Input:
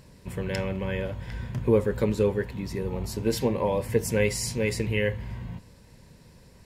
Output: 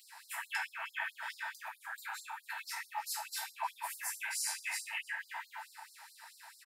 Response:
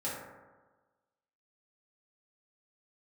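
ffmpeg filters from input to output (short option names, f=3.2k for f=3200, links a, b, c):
-filter_complex "[0:a]equalizer=f=5.2k:t=o:w=2.1:g=-8,acompressor=threshold=-32dB:ratio=6,lowshelf=f=370:t=q:w=3:g=6.5,acrossover=split=560|1400[a][b][c];[a]acompressor=threshold=-29dB:ratio=4[d];[b]acompressor=threshold=-48dB:ratio=4[e];[c]acompressor=threshold=-46dB:ratio=4[f];[d][e][f]amix=inputs=3:normalize=0,aecho=1:1:307:0.119[g];[1:a]atrim=start_sample=2205[h];[g][h]afir=irnorm=-1:irlink=0,afftfilt=real='re*gte(b*sr/1024,630*pow(4100/630,0.5+0.5*sin(2*PI*4.6*pts/sr)))':imag='im*gte(b*sr/1024,630*pow(4100/630,0.5+0.5*sin(2*PI*4.6*pts/sr)))':win_size=1024:overlap=0.75,volume=11dB"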